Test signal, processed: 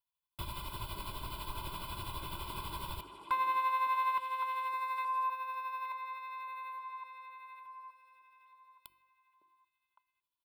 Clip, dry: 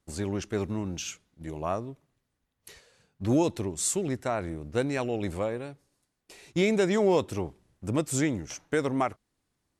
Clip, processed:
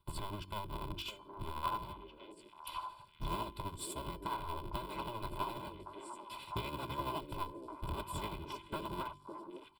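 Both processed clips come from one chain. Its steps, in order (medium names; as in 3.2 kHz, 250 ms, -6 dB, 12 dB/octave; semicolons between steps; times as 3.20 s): cycle switcher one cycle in 3, inverted; peaking EQ 480 Hz +5 dB 1 oct; comb 2 ms, depth 83%; de-hum 47.58 Hz, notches 8; compression 3:1, threshold -39 dBFS; static phaser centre 1.8 kHz, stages 6; small resonant body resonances 260/1000/3400 Hz, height 8 dB, ringing for 30 ms; tremolo 12 Hz, depth 52%; feedback comb 340 Hz, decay 0.47 s, harmonics odd, mix 50%; on a send: repeats whose band climbs or falls 558 ms, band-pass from 370 Hz, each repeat 1.4 oct, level -2.5 dB; on the sum: trim +8.5 dB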